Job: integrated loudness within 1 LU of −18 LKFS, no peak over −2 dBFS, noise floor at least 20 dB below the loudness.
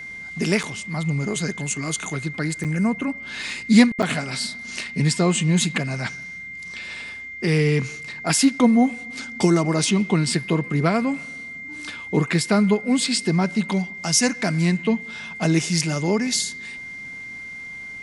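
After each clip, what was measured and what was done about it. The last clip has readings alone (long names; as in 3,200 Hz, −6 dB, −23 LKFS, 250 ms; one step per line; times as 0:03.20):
number of dropouts 3; longest dropout 7.3 ms; interfering tone 2,100 Hz; level of the tone −33 dBFS; integrated loudness −22.0 LKFS; sample peak −1.5 dBFS; target loudness −18.0 LKFS
→ repair the gap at 0:00.63/0:02.64/0:04.02, 7.3 ms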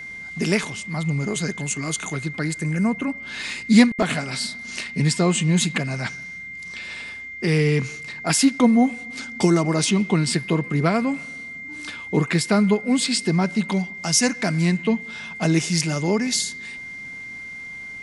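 number of dropouts 0; interfering tone 2,100 Hz; level of the tone −33 dBFS
→ notch filter 2,100 Hz, Q 30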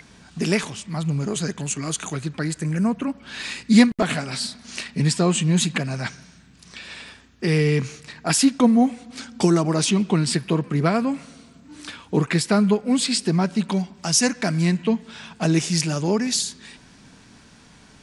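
interfering tone none found; integrated loudness −22.0 LKFS; sample peak −1.5 dBFS; target loudness −18.0 LKFS
→ level +4 dB
brickwall limiter −2 dBFS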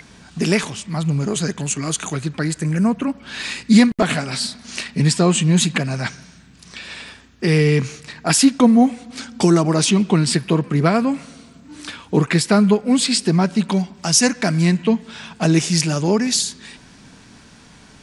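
integrated loudness −18.0 LKFS; sample peak −2.0 dBFS; background noise floor −46 dBFS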